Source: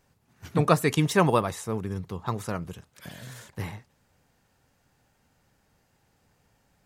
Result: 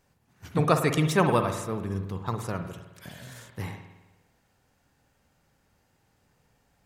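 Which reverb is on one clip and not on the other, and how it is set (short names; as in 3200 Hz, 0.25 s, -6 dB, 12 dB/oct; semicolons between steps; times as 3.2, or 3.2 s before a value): spring tank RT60 1.1 s, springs 51 ms, chirp 30 ms, DRR 6.5 dB; gain -1.5 dB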